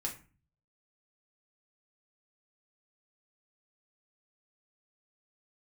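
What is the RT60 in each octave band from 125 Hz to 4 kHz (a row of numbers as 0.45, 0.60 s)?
0.75, 0.60, 0.35, 0.35, 0.35, 0.25 s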